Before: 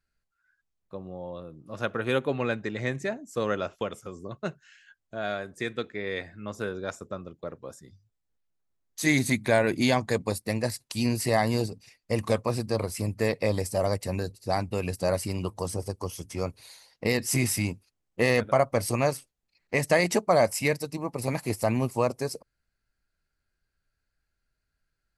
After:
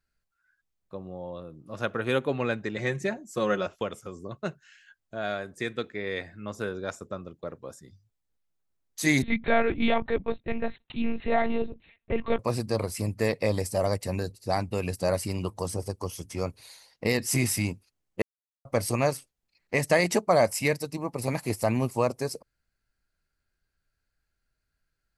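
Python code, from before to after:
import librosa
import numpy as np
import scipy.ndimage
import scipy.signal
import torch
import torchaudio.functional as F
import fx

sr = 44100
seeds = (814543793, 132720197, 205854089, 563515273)

y = fx.comb(x, sr, ms=5.5, depth=0.65, at=(2.76, 3.67))
y = fx.lpc_monotone(y, sr, seeds[0], pitch_hz=230.0, order=10, at=(9.22, 12.39))
y = fx.edit(y, sr, fx.silence(start_s=18.22, length_s=0.43), tone=tone)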